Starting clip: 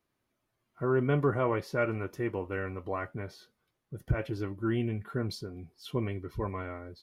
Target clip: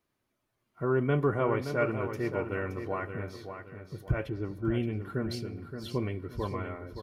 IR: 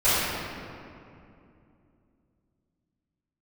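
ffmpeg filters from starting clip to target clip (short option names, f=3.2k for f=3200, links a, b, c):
-filter_complex "[0:a]asplit=3[a][b][c];[a]afade=t=out:st=4.28:d=0.02[d];[b]lowpass=f=1k:p=1,afade=t=in:st=4.28:d=0.02,afade=t=out:st=4.73:d=0.02[e];[c]afade=t=in:st=4.73:d=0.02[f];[d][e][f]amix=inputs=3:normalize=0,aecho=1:1:572|1144|1716|2288:0.376|0.132|0.046|0.0161,asplit=2[g][h];[1:a]atrim=start_sample=2205[i];[h][i]afir=irnorm=-1:irlink=0,volume=-38dB[j];[g][j]amix=inputs=2:normalize=0"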